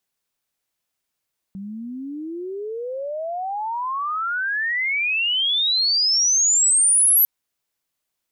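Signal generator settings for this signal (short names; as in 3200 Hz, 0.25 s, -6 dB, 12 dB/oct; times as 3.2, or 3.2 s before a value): chirp logarithmic 190 Hz -> 12000 Hz -30 dBFS -> -12 dBFS 5.70 s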